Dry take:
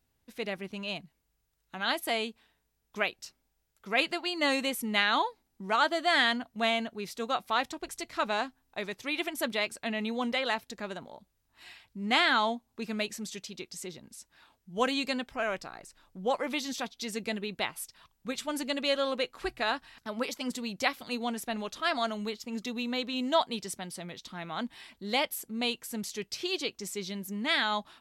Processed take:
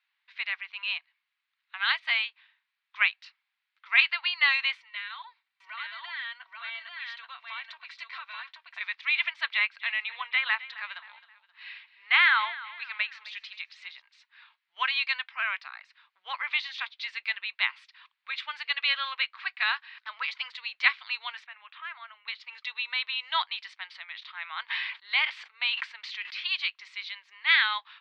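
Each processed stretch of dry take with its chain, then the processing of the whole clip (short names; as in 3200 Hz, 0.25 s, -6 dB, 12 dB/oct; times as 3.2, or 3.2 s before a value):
4.77–8.81 compressor 16:1, threshold -36 dBFS + notch comb 420 Hz + echo 0.831 s -3.5 dB
9.52–14.02 treble ducked by the level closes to 2900 Hz, closed at -27 dBFS + feedback echo 0.264 s, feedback 41%, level -17 dB
21.46–22.28 LPF 2800 Hz 24 dB/oct + compressor 2.5:1, threshold -45 dBFS
23.75–26.4 high shelf 5100 Hz -7.5 dB + sustainer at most 42 dB/s
whole clip: elliptic band-pass 1000–4200 Hz, stop band 60 dB; bell 2200 Hz +11.5 dB 1.4 oct; gain -1.5 dB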